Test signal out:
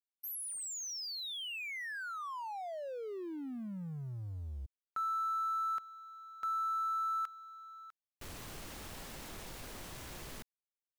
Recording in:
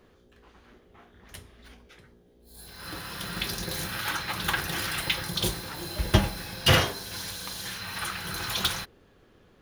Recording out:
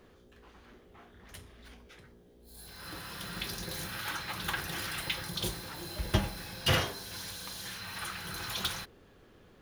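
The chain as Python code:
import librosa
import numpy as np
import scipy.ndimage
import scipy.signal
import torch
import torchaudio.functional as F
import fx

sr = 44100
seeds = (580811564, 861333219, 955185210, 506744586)

y = fx.law_mismatch(x, sr, coded='mu')
y = F.gain(torch.from_numpy(y), -7.5).numpy()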